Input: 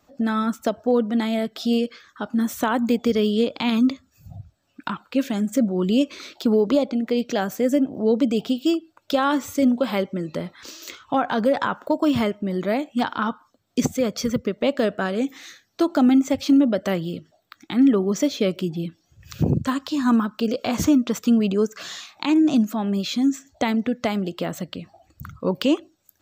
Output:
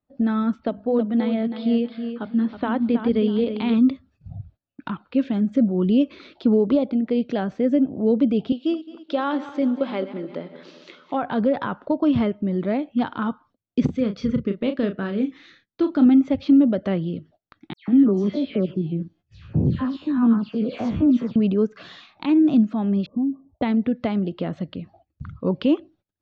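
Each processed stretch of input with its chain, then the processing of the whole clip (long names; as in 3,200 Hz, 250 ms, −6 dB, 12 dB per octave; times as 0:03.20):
0:00.60–0:03.74: elliptic low-pass filter 4,700 Hz + mains-hum notches 50/100/150/200/250/300 Hz + repeating echo 321 ms, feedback 26%, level −9 dB
0:08.52–0:11.23: feedback delay that plays each chunk backwards 108 ms, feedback 66%, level −13.5 dB + high-pass filter 320 Hz
0:13.85–0:16.06: parametric band 700 Hz −8.5 dB 0.74 octaves + double-tracking delay 35 ms −8 dB
0:17.73–0:21.36: spectrum averaged block by block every 50 ms + all-pass dispersion lows, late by 150 ms, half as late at 2,800 Hz
0:23.06–0:23.62: downward compressor 12 to 1, threshold −20 dBFS + linear-phase brick-wall low-pass 1,200 Hz
whole clip: noise gate −51 dBFS, range −21 dB; low-pass filter 4,000 Hz 24 dB per octave; low-shelf EQ 480 Hz +10.5 dB; level −6.5 dB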